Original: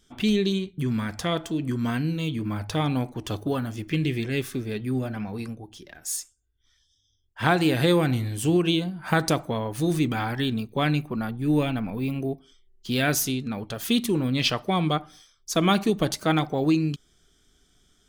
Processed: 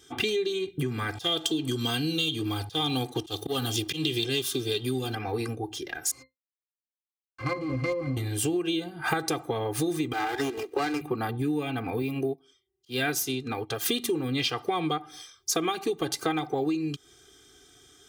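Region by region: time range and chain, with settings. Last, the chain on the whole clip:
1.15–5.15 resonant high shelf 2600 Hz +8 dB, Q 3 + auto swell 0.331 s + sample leveller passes 1
6.11–8.17 bell 720 Hz -3.5 dB 0.36 oct + companded quantiser 2-bit + octave resonator C, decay 0.15 s
10.13–11.01 steep high-pass 300 Hz 48 dB/oct + running maximum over 9 samples
12.02–13.86 HPF 59 Hz + auto swell 0.242 s + upward expander, over -46 dBFS
whole clip: comb 2.5 ms, depth 96%; compressor 12:1, threshold -31 dBFS; HPF 120 Hz 12 dB/oct; gain +6.5 dB

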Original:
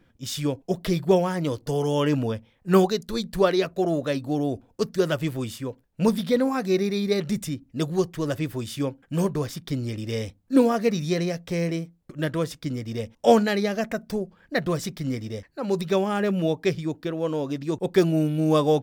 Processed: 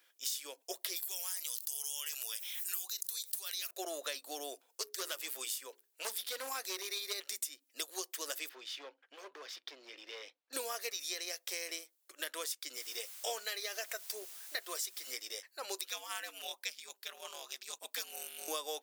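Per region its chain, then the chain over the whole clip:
0.96–3.71 differentiator + notch 4500 Hz, Q 16 + fast leveller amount 70%
4.67–7.15 notches 60/120/180/240/300/360/420 Hz + hard clip -19.5 dBFS
8.49–10.53 compressor 2:1, threshold -30 dBFS + hard clip -28.5 dBFS + air absorption 250 m
12.75–15.12 notch comb 280 Hz + added noise pink -55 dBFS
15.88–18.48 ring modulator 100 Hz + bell 390 Hz -13 dB 1.5 oct
whole clip: inverse Chebyshev high-pass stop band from 180 Hz, stop band 40 dB; differentiator; compressor 6:1, threshold -45 dBFS; gain +9 dB

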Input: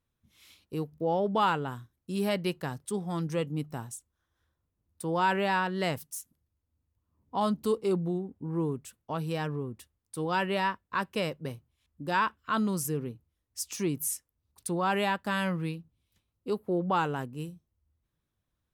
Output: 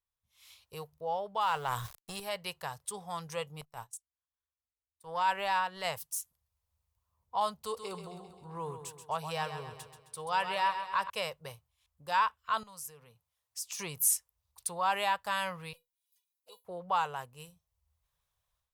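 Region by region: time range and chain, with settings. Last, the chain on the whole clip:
1.41–2.2 G.711 law mismatch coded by A + fast leveller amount 100%
3.61–5.85 gate -41 dBFS, range -20 dB + transient shaper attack -9 dB, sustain -4 dB
7.62–11.1 bell 14000 Hz -6.5 dB 0.63 oct + feedback echo 0.132 s, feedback 53%, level -9 dB
12.63–13.79 HPF 150 Hz + bell 380 Hz -14 dB 0.22 oct + compressor 2.5:1, threshold -44 dBFS
15.73–16.65 RIAA curve recording + resonator 490 Hz, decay 0.15 s, mix 90% + envelope flanger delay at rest 7.6 ms, full sweep at -49.5 dBFS
whole clip: band shelf 680 Hz +9 dB; AGC gain up to 14 dB; passive tone stack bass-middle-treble 10-0-10; gain -7.5 dB

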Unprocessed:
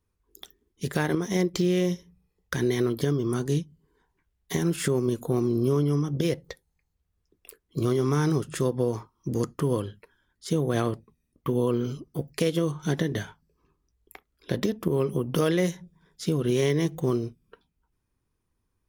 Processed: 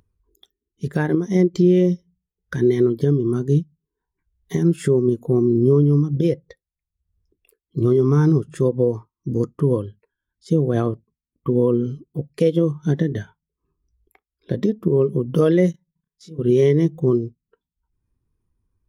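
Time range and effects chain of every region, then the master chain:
15.71–16.39 level quantiser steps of 20 dB + doubler 31 ms -3 dB
whole clip: upward compressor, threshold -45 dBFS; spectral expander 1.5:1; gain +5.5 dB

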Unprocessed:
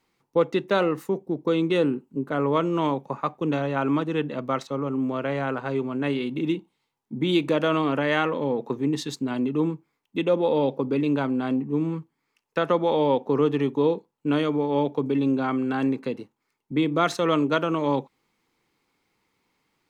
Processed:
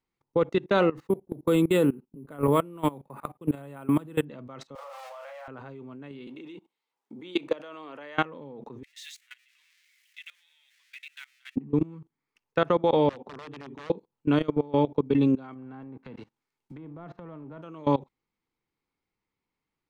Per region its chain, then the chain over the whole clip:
0.98–4.25 gate -50 dBFS, range -15 dB + careless resampling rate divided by 4×, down filtered, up hold
4.75–5.48 zero-crossing step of -34 dBFS + steep high-pass 520 Hz 96 dB/oct + doubler 34 ms -3 dB
6.27–8.18 HPF 430 Hz + three-band squash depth 40%
8.83–11.56 zero-crossing step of -36 dBFS + Chebyshev high-pass 1900 Hz, order 4 + dynamic EQ 4700 Hz, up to -7 dB, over -52 dBFS, Q 2.1
13.09–13.9 compressor 2:1, threshold -30 dBFS + wrapped overs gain 22 dB + BPF 120–4200 Hz
15.53–17.62 spectral whitening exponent 0.6 + treble ducked by the level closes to 970 Hz, closed at -21 dBFS + compressor 3:1, threshold -34 dBFS
whole clip: low shelf 95 Hz +11.5 dB; level quantiser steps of 22 dB; high shelf 7100 Hz -7.5 dB; gain +1.5 dB

